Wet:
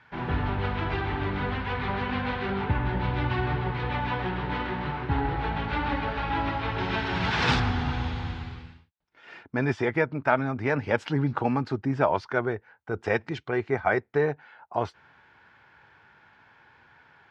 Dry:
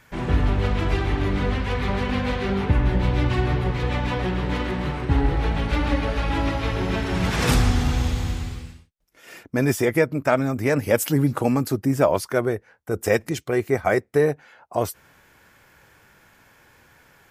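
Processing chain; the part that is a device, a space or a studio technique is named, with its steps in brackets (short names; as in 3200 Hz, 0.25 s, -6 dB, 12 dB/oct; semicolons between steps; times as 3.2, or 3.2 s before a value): guitar cabinet (speaker cabinet 80–4100 Hz, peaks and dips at 190 Hz -3 dB, 300 Hz -3 dB, 540 Hz -5 dB, 880 Hz +7 dB, 1500 Hz +5 dB); 6.78–7.6 high shelf 3400 Hz +11 dB; gain -4 dB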